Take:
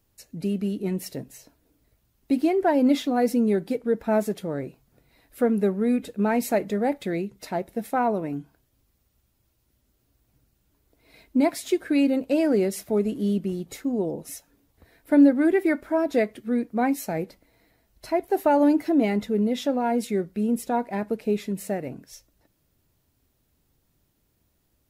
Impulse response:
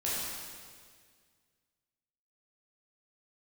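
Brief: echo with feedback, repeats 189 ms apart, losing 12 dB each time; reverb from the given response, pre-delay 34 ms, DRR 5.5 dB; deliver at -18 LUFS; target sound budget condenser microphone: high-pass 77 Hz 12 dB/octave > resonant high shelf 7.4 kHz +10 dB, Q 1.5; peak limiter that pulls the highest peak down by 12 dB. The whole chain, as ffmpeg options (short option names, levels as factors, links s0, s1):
-filter_complex "[0:a]alimiter=limit=0.1:level=0:latency=1,aecho=1:1:189|378|567:0.251|0.0628|0.0157,asplit=2[s0][s1];[1:a]atrim=start_sample=2205,adelay=34[s2];[s1][s2]afir=irnorm=-1:irlink=0,volume=0.251[s3];[s0][s3]amix=inputs=2:normalize=0,highpass=77,highshelf=f=7400:t=q:w=1.5:g=10,volume=2.82"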